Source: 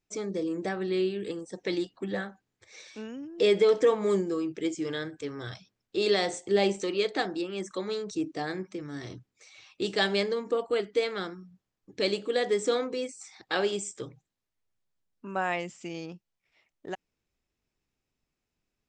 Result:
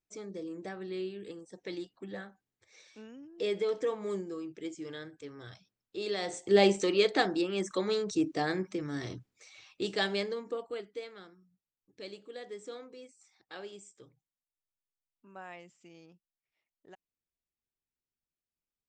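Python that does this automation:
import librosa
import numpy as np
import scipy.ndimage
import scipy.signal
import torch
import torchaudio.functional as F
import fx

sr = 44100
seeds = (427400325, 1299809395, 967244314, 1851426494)

y = fx.gain(x, sr, db=fx.line((6.14, -9.5), (6.57, 2.0), (8.94, 2.0), (10.44, -7.0), (11.22, -17.0)))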